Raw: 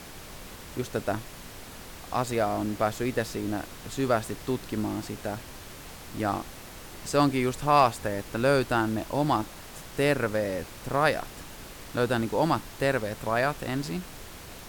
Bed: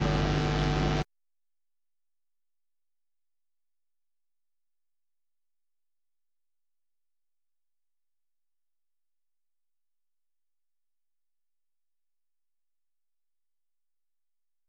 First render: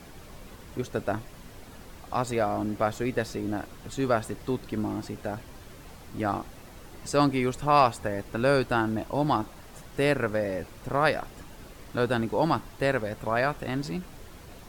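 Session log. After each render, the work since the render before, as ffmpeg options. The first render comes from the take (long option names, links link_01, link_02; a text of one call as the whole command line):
ffmpeg -i in.wav -af "afftdn=noise_reduction=8:noise_floor=-44" out.wav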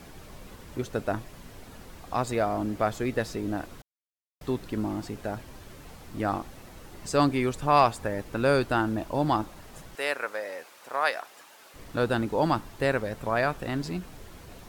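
ffmpeg -i in.wav -filter_complex "[0:a]asettb=1/sr,asplit=3[link_01][link_02][link_03];[link_01]atrim=end=9.954[link_04];[link_02]atrim=start=9.95:end=11.74,asetpts=PTS-STARTPTS,afade=type=in:duration=0.004:curve=qsin,afade=type=out:start_time=1.786:duration=0.004:curve=qsin,highpass=720[link_05];[link_03]atrim=start=11.736[link_06];[link_04][link_05]acrossfade=duration=0.004:curve1=hsin:curve2=qsin[link_07];[link_07][link_06]acrossfade=duration=0.004:curve1=qsin:curve2=hsin,asplit=3[link_08][link_09][link_10];[link_08]atrim=end=3.82,asetpts=PTS-STARTPTS,afade=type=out:start_time=3.816:duration=0.004:curve=hsin[link_11];[link_09]atrim=start=3.82:end=4.41,asetpts=PTS-STARTPTS,volume=0[link_12];[link_10]atrim=start=4.41,asetpts=PTS-STARTPTS,afade=type=in:duration=0.004:curve=hsin[link_13];[link_11][link_12][link_13]concat=n=3:v=0:a=1" out.wav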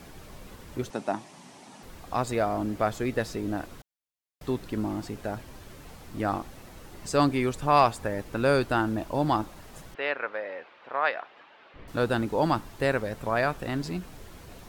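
ffmpeg -i in.wav -filter_complex "[0:a]asettb=1/sr,asplit=3[link_01][link_02][link_03];[link_01]atrim=end=0.904[link_04];[link_02]atrim=start=0.9:end=1.83,asetpts=PTS-STARTPTS,afade=type=in:duration=0.004:curve=qsin,afade=type=out:start_time=0.926:duration=0.004:curve=qsin,highpass=frequency=160:width=0.5412,highpass=frequency=160:width=1.3066,equalizer=frequency=470:width_type=q:width=4:gain=-8,equalizer=frequency=850:width_type=q:width=4:gain=7,equalizer=frequency=1500:width_type=q:width=4:gain=-5,equalizer=frequency=5900:width_type=q:width=4:gain=4,equalizer=frequency=9000:width_type=q:width=4:gain=4,lowpass=frequency=9700:width=0.5412,lowpass=frequency=9700:width=1.3066[link_05];[link_03]atrim=start=1.826[link_06];[link_04][link_05]acrossfade=duration=0.004:curve1=hsin:curve2=qsin[link_07];[link_07][link_06]acrossfade=duration=0.004:curve1=qsin:curve2=hsin,asettb=1/sr,asplit=3[link_08][link_09][link_10];[link_08]atrim=end=9.944[link_11];[link_09]atrim=start=9.94:end=11.88,asetpts=PTS-STARTPTS,afade=type=in:duration=0.004:curve=qsin,afade=type=out:start_time=1.936:duration=0.004:curve=qsin,lowpass=frequency=3300:width=0.5412,lowpass=frequency=3300:width=1.3066[link_12];[link_10]atrim=start=11.876[link_13];[link_11][link_12]acrossfade=duration=0.004:curve1=hsin:curve2=qsin[link_14];[link_14][link_13]acrossfade=duration=0.004:curve1=qsin:curve2=hsin" out.wav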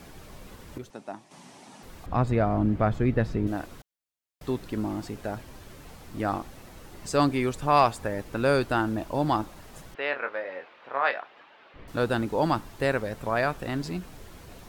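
ffmpeg -i in.wav -filter_complex "[0:a]asettb=1/sr,asplit=3[link_01][link_02][link_03];[link_01]atrim=end=2.064[link_04];[link_02]atrim=start=2.06:end=3.47,asetpts=PTS-STARTPTS,afade=type=in:duration=0.004:curve=qsin,afade=type=out:start_time=1.406:duration=0.004:curve=qsin,bass=frequency=250:gain=11,treble=frequency=4000:gain=-15[link_05];[link_03]atrim=start=3.466[link_06];[link_04][link_05]acrossfade=duration=0.004:curve1=hsin:curve2=qsin[link_07];[link_07][link_06]acrossfade=duration=0.004:curve1=qsin:curve2=hsin,asettb=1/sr,asplit=3[link_08][link_09][link_10];[link_08]atrim=end=10.104[link_11];[link_09]atrim=start=10.1:end=11.19,asetpts=PTS-STARTPTS,afade=type=in:duration=0.004:curve=qsin,afade=type=out:start_time=1.086:duration=0.004:curve=qsin,asplit=2[link_12][link_13];[link_13]adelay=22,volume=-7dB[link_14];[link_12][link_14]amix=inputs=2:normalize=0,atrim=end_sample=48069[link_15];[link_10]atrim=start=11.186[link_16];[link_11][link_15]acrossfade=duration=0.004:curve1=hsin:curve2=qsin[link_17];[link_17][link_16]acrossfade=duration=0.004:curve1=qsin:curve2=hsin,asplit=3[link_18][link_19][link_20];[link_18]atrim=end=0.782[link_21];[link_19]atrim=start=0.778:end=1.312,asetpts=PTS-STARTPTS,volume=-9dB[link_22];[link_20]atrim=start=1.308[link_23];[link_21][link_22]acrossfade=duration=0.004:curve1=hsin:curve2=hsin[link_24];[link_24][link_23]acrossfade=duration=0.004:curve1=hsin:curve2=hsin" out.wav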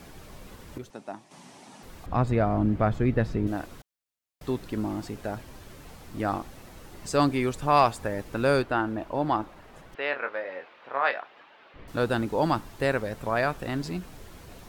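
ffmpeg -i in.wav -filter_complex "[0:a]asplit=3[link_01][link_02][link_03];[link_01]afade=type=out:start_time=8.61:duration=0.02[link_04];[link_02]bass=frequency=250:gain=-5,treble=frequency=4000:gain=-13,afade=type=in:start_time=8.61:duration=0.02,afade=type=out:start_time=9.92:duration=0.02[link_05];[link_03]afade=type=in:start_time=9.92:duration=0.02[link_06];[link_04][link_05][link_06]amix=inputs=3:normalize=0" out.wav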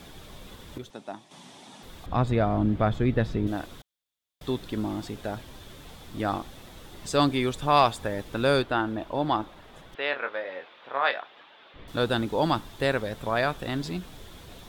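ffmpeg -i in.wav -af "equalizer=frequency=3500:width=4.6:gain=11" out.wav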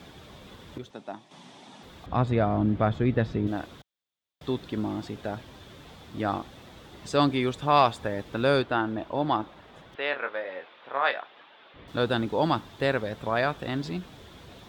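ffmpeg -i in.wav -af "highpass=65,equalizer=frequency=12000:width_type=o:width=1.3:gain=-11" out.wav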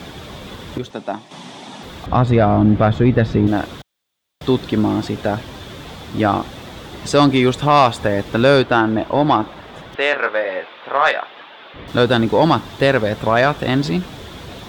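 ffmpeg -i in.wav -filter_complex "[0:a]asplit=2[link_01][link_02];[link_02]alimiter=limit=-17.5dB:level=0:latency=1:release=165,volume=1dB[link_03];[link_01][link_03]amix=inputs=2:normalize=0,acontrast=88" out.wav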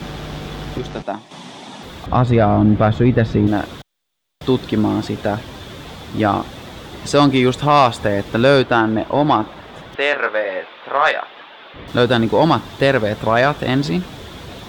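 ffmpeg -i in.wav -i bed.wav -filter_complex "[1:a]volume=-4dB[link_01];[0:a][link_01]amix=inputs=2:normalize=0" out.wav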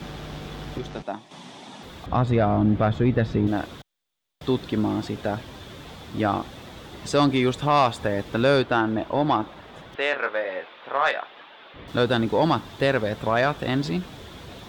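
ffmpeg -i in.wav -af "volume=-7dB" out.wav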